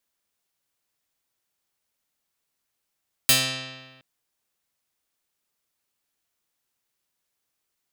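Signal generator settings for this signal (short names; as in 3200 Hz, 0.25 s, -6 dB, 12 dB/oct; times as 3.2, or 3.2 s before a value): plucked string C3, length 0.72 s, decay 1.43 s, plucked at 0.31, medium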